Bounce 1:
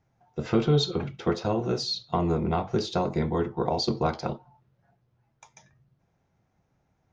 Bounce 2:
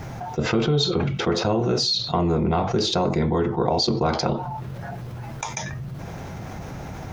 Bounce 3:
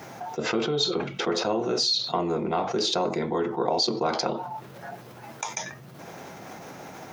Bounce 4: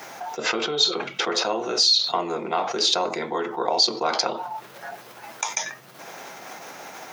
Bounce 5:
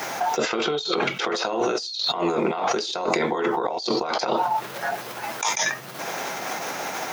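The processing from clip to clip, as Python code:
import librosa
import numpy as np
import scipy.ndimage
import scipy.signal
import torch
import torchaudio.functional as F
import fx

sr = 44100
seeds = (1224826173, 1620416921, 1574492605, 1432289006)

y1 = fx.env_flatten(x, sr, amount_pct=70)
y2 = scipy.signal.sosfilt(scipy.signal.butter(2, 270.0, 'highpass', fs=sr, output='sos'), y1)
y2 = fx.high_shelf(y2, sr, hz=7900.0, db=5.0)
y2 = y2 * librosa.db_to_amplitude(-2.5)
y3 = fx.highpass(y2, sr, hz=950.0, slope=6)
y3 = y3 * librosa.db_to_amplitude(6.5)
y4 = fx.over_compress(y3, sr, threshold_db=-30.0, ratio=-1.0)
y4 = y4 * librosa.db_to_amplitude(5.0)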